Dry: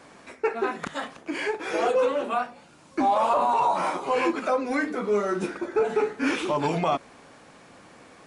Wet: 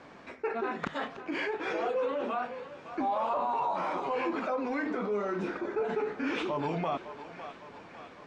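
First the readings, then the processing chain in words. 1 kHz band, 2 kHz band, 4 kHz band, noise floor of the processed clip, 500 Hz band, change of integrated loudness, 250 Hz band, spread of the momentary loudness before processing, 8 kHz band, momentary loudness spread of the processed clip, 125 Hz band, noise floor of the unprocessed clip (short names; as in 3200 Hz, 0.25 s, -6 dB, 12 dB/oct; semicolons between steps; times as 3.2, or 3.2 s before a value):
-7.0 dB, -5.5 dB, -7.0 dB, -51 dBFS, -7.0 dB, -7.0 dB, -5.5 dB, 9 LU, under -15 dB, 14 LU, -5.5 dB, -52 dBFS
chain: air absorption 150 m; thinning echo 0.556 s, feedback 63%, high-pass 470 Hz, level -17 dB; in parallel at -1 dB: negative-ratio compressor -32 dBFS, ratio -1; on the sum: gain -9 dB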